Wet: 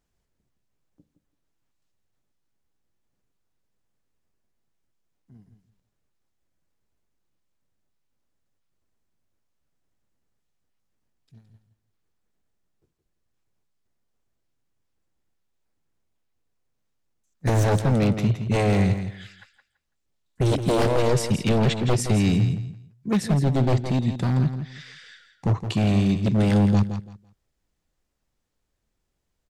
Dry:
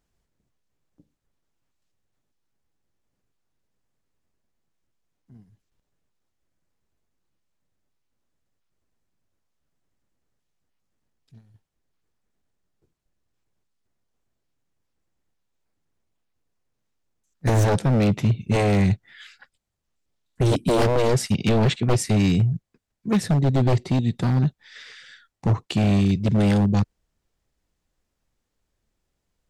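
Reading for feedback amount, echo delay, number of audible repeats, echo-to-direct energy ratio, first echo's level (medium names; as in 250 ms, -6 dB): 21%, 167 ms, 2, -9.5 dB, -9.5 dB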